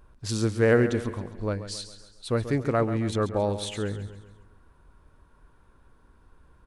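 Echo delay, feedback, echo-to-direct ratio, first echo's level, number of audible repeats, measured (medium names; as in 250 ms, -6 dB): 136 ms, 47%, -11.0 dB, -12.0 dB, 4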